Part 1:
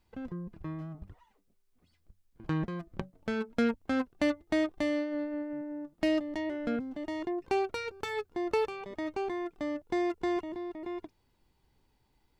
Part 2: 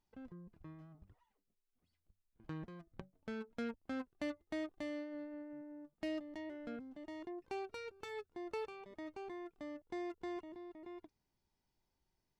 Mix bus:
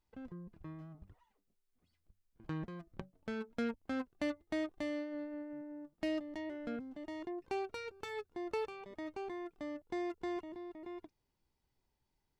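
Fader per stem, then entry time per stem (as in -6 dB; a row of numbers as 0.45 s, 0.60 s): -13.5 dB, -3.0 dB; 0.00 s, 0.00 s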